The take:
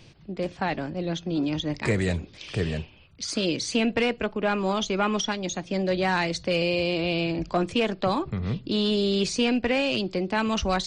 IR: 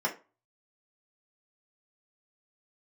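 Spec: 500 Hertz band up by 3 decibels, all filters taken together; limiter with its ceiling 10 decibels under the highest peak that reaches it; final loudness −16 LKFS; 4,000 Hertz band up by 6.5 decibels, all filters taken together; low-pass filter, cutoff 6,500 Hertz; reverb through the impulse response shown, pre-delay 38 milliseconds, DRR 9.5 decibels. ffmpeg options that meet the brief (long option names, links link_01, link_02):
-filter_complex "[0:a]lowpass=6500,equalizer=frequency=500:width_type=o:gain=3.5,equalizer=frequency=4000:width_type=o:gain=9,alimiter=limit=-20.5dB:level=0:latency=1,asplit=2[link_01][link_02];[1:a]atrim=start_sample=2205,adelay=38[link_03];[link_02][link_03]afir=irnorm=-1:irlink=0,volume=-18dB[link_04];[link_01][link_04]amix=inputs=2:normalize=0,volume=12.5dB"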